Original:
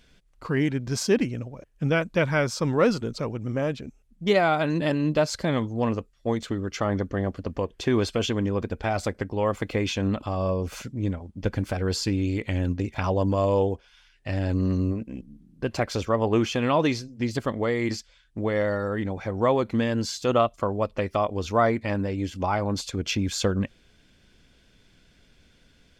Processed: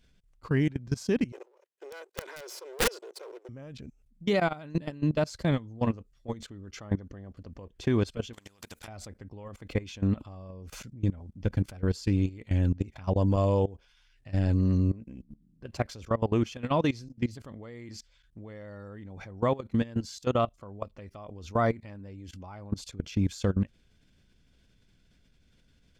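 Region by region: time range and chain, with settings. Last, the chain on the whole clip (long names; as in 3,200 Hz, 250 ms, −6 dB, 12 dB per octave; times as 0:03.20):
0:01.32–0:03.49: lower of the sound and its delayed copy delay 2 ms + Chebyshev high-pass filter 370 Hz, order 5 + wrap-around overflow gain 15 dB
0:08.33–0:08.88: spectral tilt +3.5 dB per octave + downward compressor 16 to 1, threshold −32 dBFS + every bin compressed towards the loudest bin 2 to 1
whole clip: bass and treble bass +7 dB, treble +2 dB; output level in coarse steps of 20 dB; level −3.5 dB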